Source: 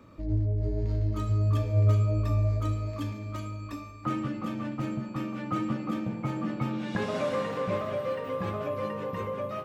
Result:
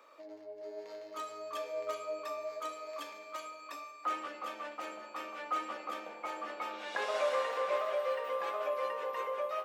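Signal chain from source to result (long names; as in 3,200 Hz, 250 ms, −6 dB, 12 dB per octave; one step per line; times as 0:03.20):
high-pass filter 530 Hz 24 dB per octave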